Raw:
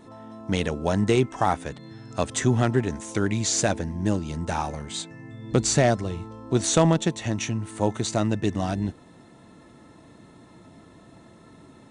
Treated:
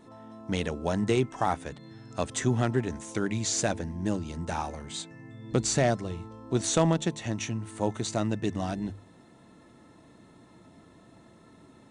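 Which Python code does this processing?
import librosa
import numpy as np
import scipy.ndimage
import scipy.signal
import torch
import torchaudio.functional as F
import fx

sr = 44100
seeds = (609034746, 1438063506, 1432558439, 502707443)

y = fx.hum_notches(x, sr, base_hz=50, count=3)
y = y * librosa.db_to_amplitude(-4.5)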